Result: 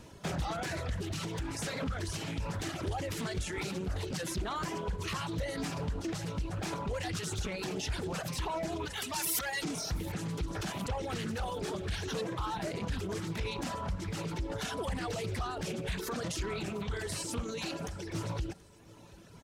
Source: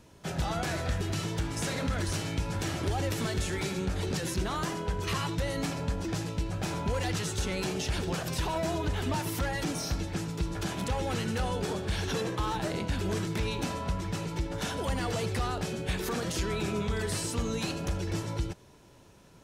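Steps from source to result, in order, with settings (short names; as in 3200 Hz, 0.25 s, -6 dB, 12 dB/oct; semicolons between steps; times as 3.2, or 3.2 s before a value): limiter -30.5 dBFS, peak gain reduction 9 dB; 17.42–18.15 low shelf 100 Hz -11.5 dB; digital reverb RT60 4.6 s, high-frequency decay 0.8×, pre-delay 90 ms, DRR 16 dB; reverb removal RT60 1.8 s; 8.85–9.62 tilt +3.5 dB/oct; feedback echo 0.73 s, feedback 44%, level -22 dB; Doppler distortion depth 0.37 ms; gain +5 dB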